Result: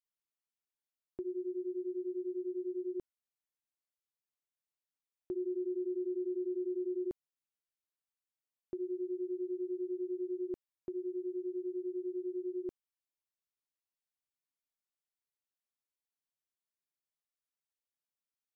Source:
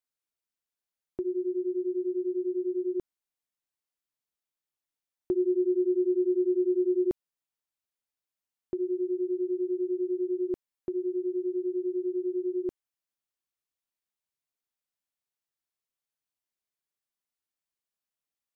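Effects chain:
brickwall limiter −23 dBFS, peak gain reduction 3.5 dB
level −8 dB

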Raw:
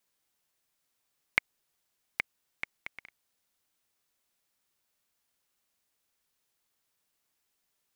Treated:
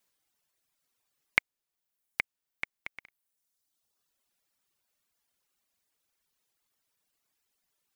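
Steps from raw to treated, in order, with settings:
reverb reduction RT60 1.4 s
level +2 dB

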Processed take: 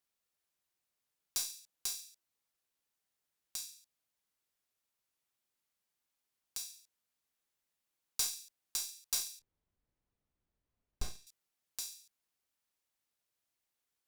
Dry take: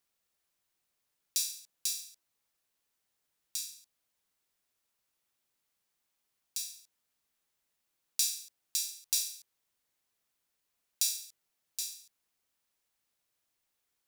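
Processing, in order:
harmonic generator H 3 −13 dB, 4 −24 dB, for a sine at −8 dBFS
soft clipping −19.5 dBFS, distortion −10 dB
0:09.39–0:11.27: spectral tilt −5 dB per octave
level +4.5 dB

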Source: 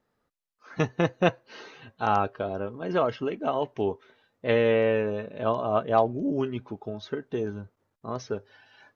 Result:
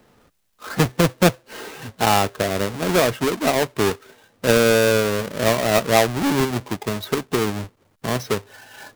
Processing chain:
each half-wave held at its own peak
multiband upward and downward compressor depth 40%
level +3.5 dB

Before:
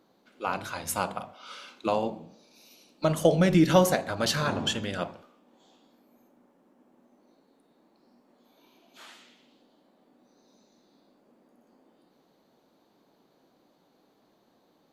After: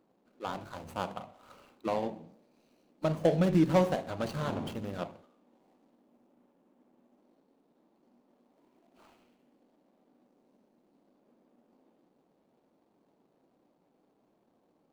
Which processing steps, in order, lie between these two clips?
running median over 25 samples
level −4 dB

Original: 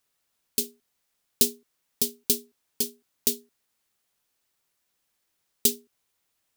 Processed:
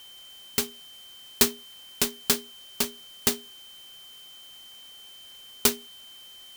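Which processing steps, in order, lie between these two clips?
steady tone 3,100 Hz −47 dBFS
converter with an unsteady clock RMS 0.027 ms
level +2.5 dB

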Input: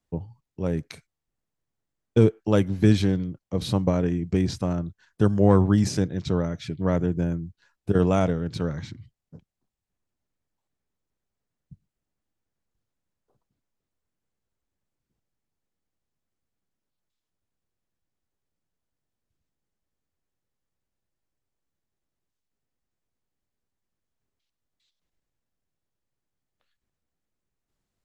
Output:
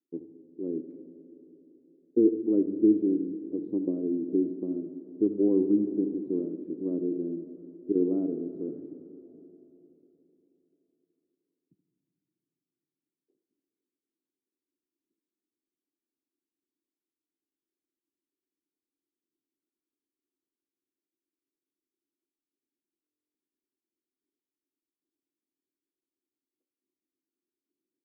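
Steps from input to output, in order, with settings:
flat-topped band-pass 320 Hz, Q 2.9
single-tap delay 77 ms −15 dB
on a send at −9.5 dB: convolution reverb RT60 3.8 s, pre-delay 20 ms
on the sum: buffer that repeats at 0:23.02, samples 1,024, times 13
level +3.5 dB

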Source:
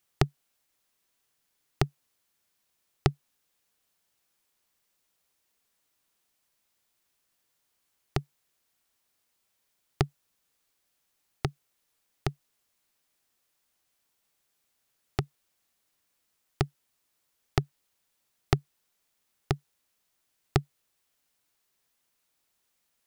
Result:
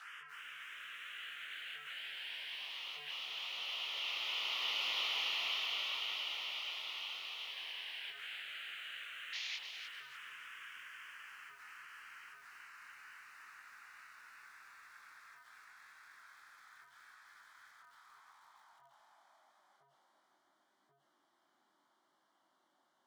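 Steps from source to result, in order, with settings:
sign of each sample alone
source passing by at 0:04.98, 11 m/s, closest 6.2 metres
high-pass filter 180 Hz 12 dB per octave
parametric band 3,000 Hz +13.5 dB 0.58 octaves
mid-hump overdrive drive 11 dB, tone 5,900 Hz, clips at −27.5 dBFS
sound drawn into the spectrogram noise, 0:09.32–0:09.57, 1,600–7,200 Hz −40 dBFS
phaser swept by the level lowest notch 360 Hz, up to 1,600 Hz, full sweep at −42 dBFS
band-pass filter sweep 1,500 Hz → 380 Hz, 0:17.63–0:20.55
chorus effect 0.81 Hz, delay 19 ms, depth 6.6 ms
feedback echo at a low word length 295 ms, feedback 35%, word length 13 bits, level −7.5 dB
level +16.5 dB

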